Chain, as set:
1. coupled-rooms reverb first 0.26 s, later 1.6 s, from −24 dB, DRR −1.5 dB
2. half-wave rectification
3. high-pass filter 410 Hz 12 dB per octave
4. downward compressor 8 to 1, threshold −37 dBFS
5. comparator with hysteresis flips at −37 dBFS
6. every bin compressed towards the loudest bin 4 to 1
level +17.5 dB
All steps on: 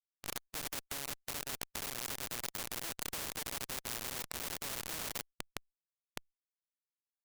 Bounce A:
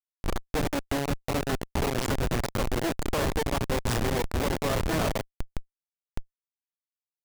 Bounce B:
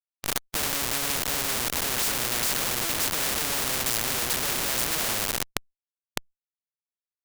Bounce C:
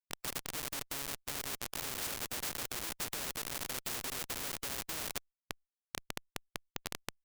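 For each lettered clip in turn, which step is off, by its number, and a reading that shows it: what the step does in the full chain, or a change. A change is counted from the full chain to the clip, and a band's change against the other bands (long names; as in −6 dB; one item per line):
6, 8 kHz band −15.5 dB
4, change in momentary loudness spread −3 LU
2, distortion level 0 dB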